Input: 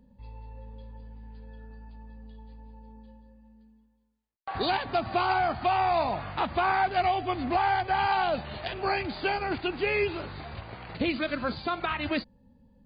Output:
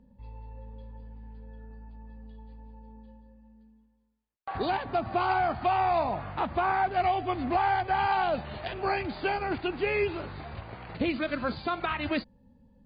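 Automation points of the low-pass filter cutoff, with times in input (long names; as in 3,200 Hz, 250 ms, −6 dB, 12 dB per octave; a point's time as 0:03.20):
low-pass filter 6 dB per octave
2,300 Hz
from 0:01.33 1,400 Hz
from 0:02.05 2,600 Hz
from 0:04.57 1,500 Hz
from 0:05.21 2,500 Hz
from 0:06.00 1,600 Hz
from 0:07.00 2,700 Hz
from 0:11.32 4,400 Hz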